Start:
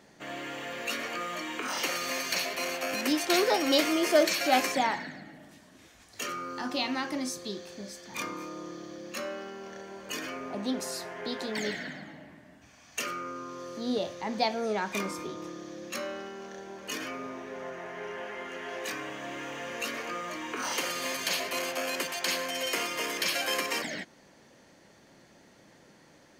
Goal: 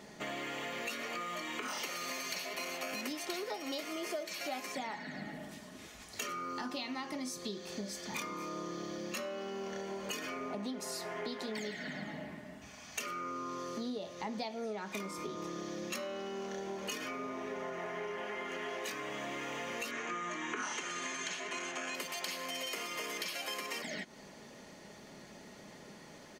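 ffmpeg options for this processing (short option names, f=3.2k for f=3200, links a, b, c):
-filter_complex "[0:a]bandreject=f=1.6k:w=12,aecho=1:1:4.8:0.33,acompressor=threshold=-41dB:ratio=12,asettb=1/sr,asplit=3[a][b][c];[a]atrim=end=19.914[d];[b]atrim=start=19.91:end=21.95,asetpts=PTS-STARTPTS,afade=t=in:d=0.004:c=qsin,afade=t=out:st=2.036:d=0.004:c=qsin,highpass=130,equalizer=f=150:t=q:w=4:g=4,equalizer=f=350:t=q:w=4:g=4,equalizer=f=540:t=q:w=4:g=-7,equalizer=f=1.6k:t=q:w=4:g=7,equalizer=f=4.7k:t=q:w=4:g=-10,equalizer=f=6.7k:t=q:w=4:g=5,lowpass=f=7.6k:w=0.5412,lowpass=f=7.6k:w=1.3066[e];[c]atrim=start=21.946[f];[d][e]acrossfade=d=0.004:c1=hsin:c2=qsin[g];[g][f]acrossfade=d=0.004:c1=qsin:c2=hsin,volume=4.5dB"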